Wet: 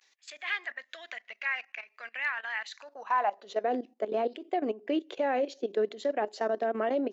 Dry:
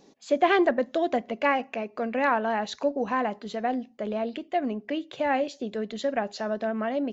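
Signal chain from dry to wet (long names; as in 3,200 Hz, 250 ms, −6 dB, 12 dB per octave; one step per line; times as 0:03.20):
pitch vibrato 0.51 Hz 60 cents
output level in coarse steps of 15 dB
high-pass filter sweep 1,900 Hz → 370 Hz, 0:02.72–0:03.72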